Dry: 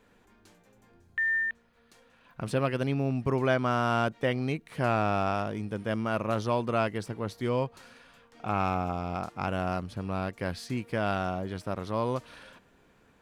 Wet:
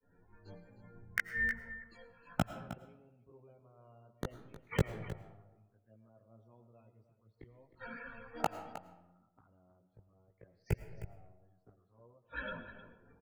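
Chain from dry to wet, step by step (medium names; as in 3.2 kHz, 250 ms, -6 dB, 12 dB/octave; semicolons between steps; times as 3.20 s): expander -56 dBFS; loudest bins only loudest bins 32; touch-sensitive flanger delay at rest 11.6 ms, full sweep at -27 dBFS; inverted gate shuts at -34 dBFS, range -41 dB; in parallel at -12 dB: companded quantiser 2-bit; on the sum: chorus voices 4, 0.31 Hz, delay 18 ms, depth 1.3 ms; 10.62–11.09 s: static phaser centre 1.1 kHz, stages 6; delay 312 ms -11.5 dB; on a send at -11.5 dB: reverberation RT60 1.2 s, pre-delay 65 ms; on the sum: three bands expanded up and down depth 40%; trim +15 dB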